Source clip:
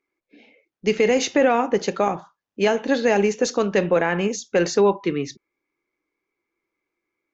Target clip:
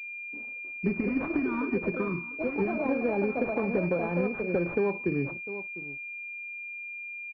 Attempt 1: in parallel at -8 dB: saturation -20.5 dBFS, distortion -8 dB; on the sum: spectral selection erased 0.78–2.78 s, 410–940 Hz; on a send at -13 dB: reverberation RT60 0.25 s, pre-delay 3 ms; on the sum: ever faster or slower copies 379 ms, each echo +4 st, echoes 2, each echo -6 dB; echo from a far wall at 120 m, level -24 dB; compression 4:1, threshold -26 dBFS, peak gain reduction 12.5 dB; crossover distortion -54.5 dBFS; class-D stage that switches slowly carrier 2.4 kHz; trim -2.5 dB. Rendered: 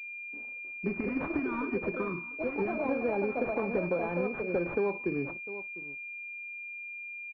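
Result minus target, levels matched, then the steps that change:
saturation: distortion +9 dB; 125 Hz band -3.0 dB
change: saturation -12 dBFS, distortion -18 dB; add after compression: peaking EQ 85 Hz +9.5 dB 2.8 oct

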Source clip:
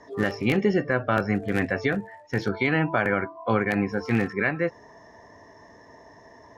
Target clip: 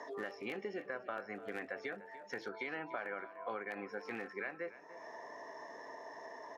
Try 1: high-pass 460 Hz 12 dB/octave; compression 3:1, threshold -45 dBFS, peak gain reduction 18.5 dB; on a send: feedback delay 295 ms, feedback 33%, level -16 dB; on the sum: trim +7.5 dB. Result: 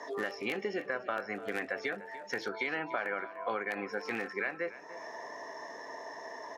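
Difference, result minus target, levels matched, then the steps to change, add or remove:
compression: peak gain reduction -6 dB; 4 kHz band +2.5 dB
add after high-pass: treble shelf 2.6 kHz -6 dB; change: compression 3:1, threshold -55 dBFS, peak gain reduction 24.5 dB

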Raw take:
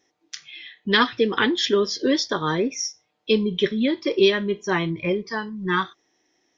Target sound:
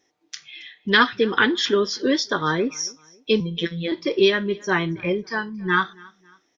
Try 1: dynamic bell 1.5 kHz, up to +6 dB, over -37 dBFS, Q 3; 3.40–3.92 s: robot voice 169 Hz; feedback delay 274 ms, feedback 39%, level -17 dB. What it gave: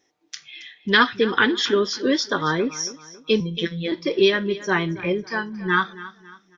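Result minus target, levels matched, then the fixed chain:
echo-to-direct +8 dB
dynamic bell 1.5 kHz, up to +6 dB, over -37 dBFS, Q 3; 3.40–3.92 s: robot voice 169 Hz; feedback delay 274 ms, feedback 39%, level -25 dB

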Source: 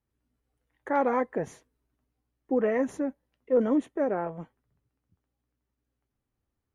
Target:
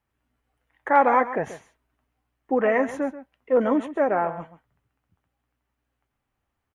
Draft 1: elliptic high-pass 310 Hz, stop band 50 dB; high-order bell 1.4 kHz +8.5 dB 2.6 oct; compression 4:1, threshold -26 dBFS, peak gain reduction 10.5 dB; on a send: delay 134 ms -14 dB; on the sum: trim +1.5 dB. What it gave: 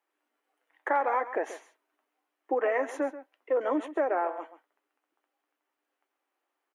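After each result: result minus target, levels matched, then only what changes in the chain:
compression: peak gain reduction +10.5 dB; 250 Hz band -2.5 dB
remove: compression 4:1, threshold -26 dBFS, peak gain reduction 10.5 dB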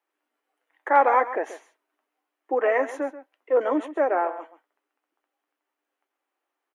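250 Hz band -5.0 dB
remove: elliptic high-pass 310 Hz, stop band 50 dB

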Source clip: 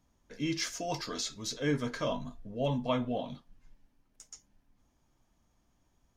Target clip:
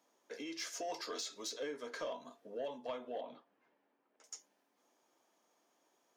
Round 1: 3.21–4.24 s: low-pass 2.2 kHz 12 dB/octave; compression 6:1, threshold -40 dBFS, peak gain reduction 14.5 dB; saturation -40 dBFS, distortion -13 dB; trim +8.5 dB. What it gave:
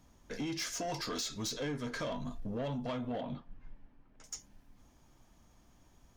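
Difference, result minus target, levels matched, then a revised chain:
250 Hz band +6.0 dB
3.21–4.24 s: low-pass 2.2 kHz 12 dB/octave; compression 6:1, threshold -40 dBFS, peak gain reduction 14.5 dB; ladder high-pass 330 Hz, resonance 30%; saturation -40 dBFS, distortion -20 dB; trim +8.5 dB

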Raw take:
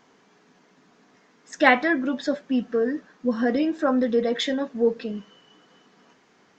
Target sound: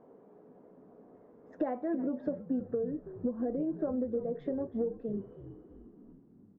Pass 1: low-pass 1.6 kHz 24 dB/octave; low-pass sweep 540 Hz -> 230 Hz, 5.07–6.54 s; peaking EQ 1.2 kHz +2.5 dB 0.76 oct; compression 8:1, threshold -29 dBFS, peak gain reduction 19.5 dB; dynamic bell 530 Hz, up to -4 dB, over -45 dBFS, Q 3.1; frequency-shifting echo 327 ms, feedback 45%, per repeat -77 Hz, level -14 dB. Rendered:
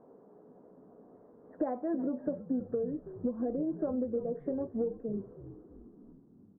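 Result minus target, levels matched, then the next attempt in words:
2 kHz band -4.0 dB
low-pass sweep 540 Hz -> 230 Hz, 5.07–6.54 s; peaking EQ 1.2 kHz +2.5 dB 0.76 oct; compression 8:1, threshold -29 dBFS, peak gain reduction 19.5 dB; dynamic bell 530 Hz, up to -4 dB, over -45 dBFS, Q 3.1; frequency-shifting echo 327 ms, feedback 45%, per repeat -77 Hz, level -14 dB

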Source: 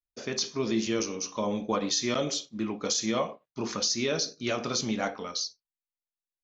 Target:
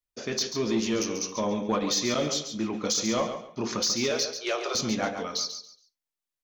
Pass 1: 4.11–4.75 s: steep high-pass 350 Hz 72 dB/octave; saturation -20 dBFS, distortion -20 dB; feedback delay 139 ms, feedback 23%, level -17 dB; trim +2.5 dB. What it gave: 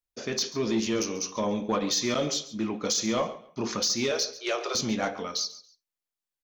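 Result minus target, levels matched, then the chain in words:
echo-to-direct -8 dB
4.11–4.75 s: steep high-pass 350 Hz 72 dB/octave; saturation -20 dBFS, distortion -20 dB; feedback delay 139 ms, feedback 23%, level -9 dB; trim +2.5 dB

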